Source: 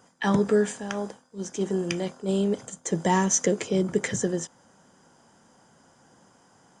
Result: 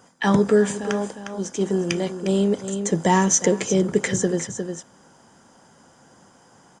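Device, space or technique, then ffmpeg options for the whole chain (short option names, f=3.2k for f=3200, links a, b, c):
ducked delay: -filter_complex "[0:a]asplit=3[a][b][c];[b]adelay=356,volume=-7dB[d];[c]apad=whole_len=315619[e];[d][e]sidechaincompress=threshold=-31dB:ratio=8:attack=16:release=262[f];[a][f]amix=inputs=2:normalize=0,volume=4.5dB"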